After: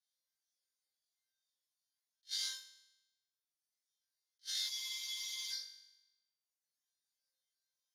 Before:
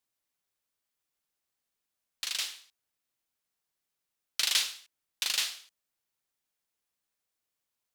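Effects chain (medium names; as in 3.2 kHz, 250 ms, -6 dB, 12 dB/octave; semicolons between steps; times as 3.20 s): chord resonator F2 sus4, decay 0.46 s; compression, threshold -46 dBFS, peak gain reduction 9 dB; peak limiter -41 dBFS, peak gain reduction 8.5 dB; resonant low-pass 7.7 kHz, resonance Q 3.3; tilt EQ +4 dB/octave; static phaser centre 1.7 kHz, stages 8; flutter echo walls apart 3.6 m, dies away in 1 s; reverb removal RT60 1.1 s; spectral freeze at 4.71 s, 0.80 s; attacks held to a fixed rise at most 460 dB/s; trim +2 dB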